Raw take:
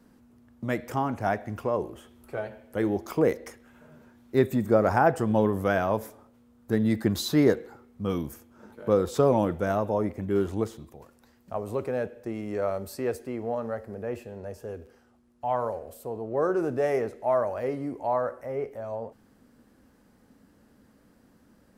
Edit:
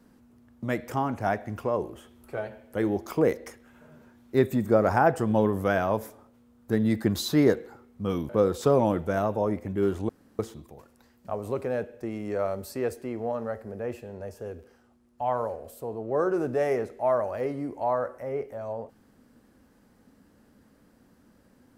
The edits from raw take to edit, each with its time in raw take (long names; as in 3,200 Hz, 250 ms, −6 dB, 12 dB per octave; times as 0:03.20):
0:08.29–0:08.82: remove
0:10.62: splice in room tone 0.30 s